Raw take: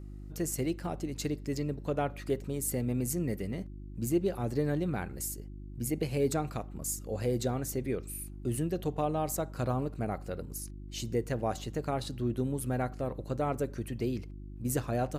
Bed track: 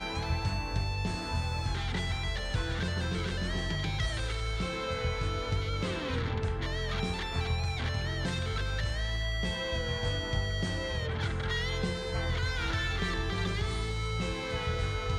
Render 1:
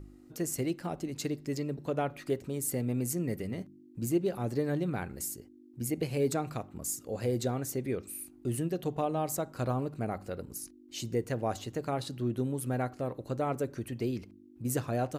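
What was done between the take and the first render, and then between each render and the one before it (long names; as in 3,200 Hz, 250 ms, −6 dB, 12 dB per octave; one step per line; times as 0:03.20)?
hum removal 50 Hz, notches 4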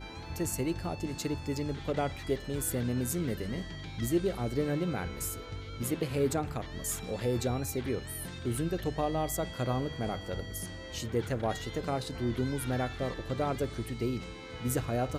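mix in bed track −10 dB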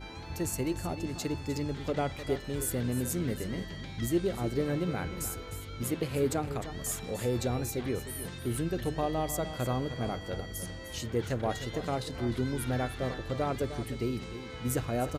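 single-tap delay 305 ms −12 dB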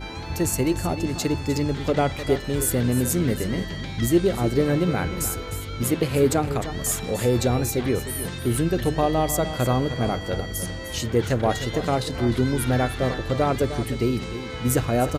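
level +9.5 dB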